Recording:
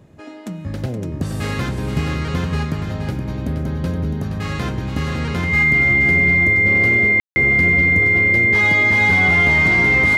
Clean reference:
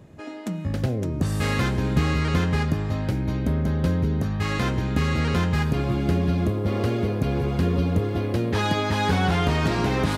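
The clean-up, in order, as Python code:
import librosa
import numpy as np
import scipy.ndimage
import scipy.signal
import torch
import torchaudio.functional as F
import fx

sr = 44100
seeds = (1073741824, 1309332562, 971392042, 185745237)

y = fx.notch(x, sr, hz=2100.0, q=30.0)
y = fx.fix_ambience(y, sr, seeds[0], print_start_s=0.0, print_end_s=0.5, start_s=7.2, end_s=7.36)
y = fx.fix_echo_inverse(y, sr, delay_ms=472, level_db=-7.5)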